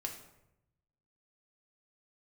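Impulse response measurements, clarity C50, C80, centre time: 7.5 dB, 10.5 dB, 22 ms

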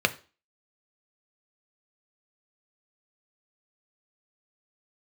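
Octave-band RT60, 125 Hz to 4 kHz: 0.30, 0.40, 0.35, 0.35, 0.35, 0.35 s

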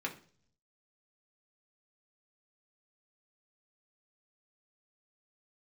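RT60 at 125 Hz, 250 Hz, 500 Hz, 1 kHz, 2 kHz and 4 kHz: 1.0, 0.70, 0.55, 0.40, 0.40, 0.50 s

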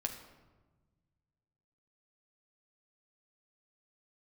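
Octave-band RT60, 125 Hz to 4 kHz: 2.5, 1.9, 1.4, 1.2, 0.95, 0.70 s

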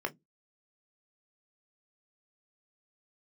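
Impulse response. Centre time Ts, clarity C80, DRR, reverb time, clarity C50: 5 ms, 40.5 dB, 4.5 dB, 0.15 s, 25.0 dB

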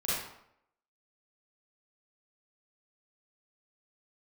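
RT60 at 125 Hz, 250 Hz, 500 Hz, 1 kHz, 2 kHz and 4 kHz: 0.70, 0.70, 0.75, 0.75, 0.65, 0.55 s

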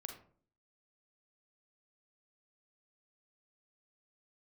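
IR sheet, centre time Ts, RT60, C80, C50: 20 ms, 0.50 s, 11.5 dB, 6.5 dB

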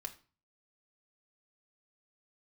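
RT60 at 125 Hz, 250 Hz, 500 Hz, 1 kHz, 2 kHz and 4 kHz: 0.55, 0.45, 0.35, 0.40, 0.35, 0.30 s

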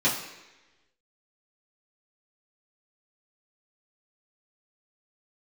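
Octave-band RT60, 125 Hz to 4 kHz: 0.80, 1.0, 1.1, 1.0, 1.2, 1.1 s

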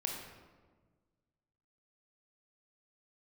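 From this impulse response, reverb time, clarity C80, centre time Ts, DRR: 1.4 s, 4.5 dB, 54 ms, 0.0 dB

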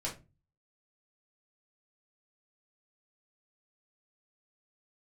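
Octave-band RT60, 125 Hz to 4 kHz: 0.60, 0.40, 0.30, 0.25, 0.25, 0.20 s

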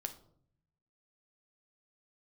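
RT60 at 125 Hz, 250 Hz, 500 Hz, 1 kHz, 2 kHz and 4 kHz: 1.3, 1.0, 0.70, 0.55, 0.35, 0.35 s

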